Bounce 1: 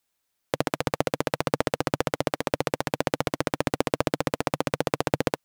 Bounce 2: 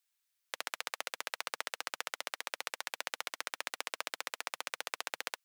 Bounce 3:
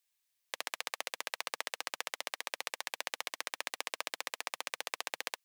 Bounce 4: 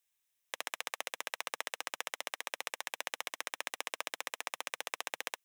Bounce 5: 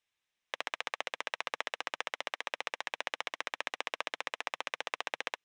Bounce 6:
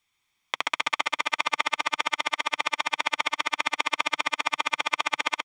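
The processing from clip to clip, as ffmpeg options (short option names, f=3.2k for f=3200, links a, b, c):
-af "highpass=1.5k,volume=-4.5dB"
-af "bandreject=f=1.4k:w=5.5,volume=1dB"
-af "equalizer=f=4.5k:w=8:g=-12"
-af "lowpass=4k,volume=3.5dB"
-filter_complex "[0:a]aecho=1:1:0.9:0.56,asplit=2[a][b];[b]aecho=0:1:130|260|390|520|650|780|910|1040:0.562|0.332|0.196|0.115|0.0681|0.0402|0.0237|0.014[c];[a][c]amix=inputs=2:normalize=0,volume=8.5dB"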